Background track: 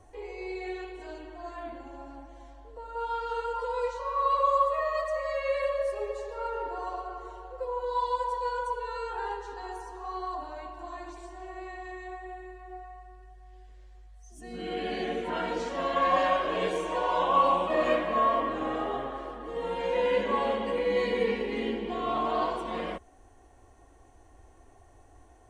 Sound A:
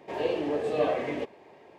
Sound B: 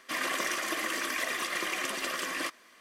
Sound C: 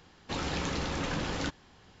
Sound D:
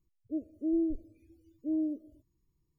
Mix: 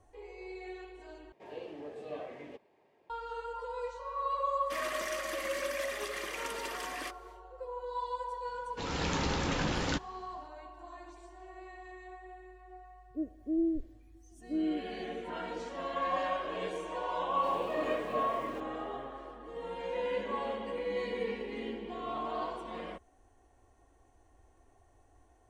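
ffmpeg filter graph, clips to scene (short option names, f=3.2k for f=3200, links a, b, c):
-filter_complex "[1:a]asplit=2[a][b];[0:a]volume=-8dB[c];[3:a]dynaudnorm=f=170:g=5:m=11dB[d];[b]aeval=exprs='val(0)*gte(abs(val(0)),0.00841)':c=same[e];[c]asplit=2[f][g];[f]atrim=end=1.324[h];[a]atrim=end=1.78,asetpts=PTS-STARTPTS,volume=-15.5dB[i];[g]atrim=start=3.096[j];[2:a]atrim=end=2.8,asetpts=PTS-STARTPTS,volume=-7.5dB,afade=t=in:d=0.1,afade=t=out:st=2.7:d=0.1,adelay=203301S[k];[d]atrim=end=2,asetpts=PTS-STARTPTS,volume=-10dB,afade=t=in:d=0.004:c=hsin,afade=t=out:st=1.996:d=0.004:c=hsin,adelay=8480[l];[4:a]atrim=end=2.78,asetpts=PTS-STARTPTS,volume=-1dB,afade=t=in:d=0.004:c=hsin,afade=t=out:st=2.776:d=0.004:c=hsin,adelay=12850[m];[e]atrim=end=1.78,asetpts=PTS-STARTPTS,volume=-12dB,afade=t=in:d=0.004:c=hsin,afade=t=out:st=1.776:d=0.004:c=hsin,adelay=17350[n];[h][i]acrossfade=d=0.004:c1=hsin:c2=hsin[o];[o][j]acrossfade=d=0.004:c1=hsin:c2=hsin[p];[p][k][l][m][n]amix=inputs=5:normalize=0"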